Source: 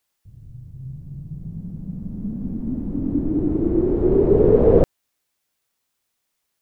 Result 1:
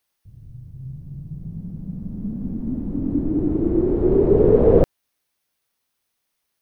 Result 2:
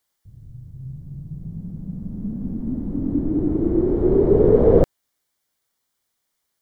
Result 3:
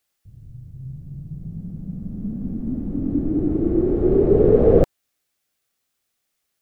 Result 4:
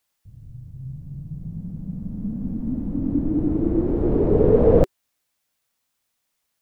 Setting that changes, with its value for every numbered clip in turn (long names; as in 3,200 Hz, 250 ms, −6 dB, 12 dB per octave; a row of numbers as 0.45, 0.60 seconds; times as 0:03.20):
notch filter, centre frequency: 7,300, 2,600, 960, 380 Hertz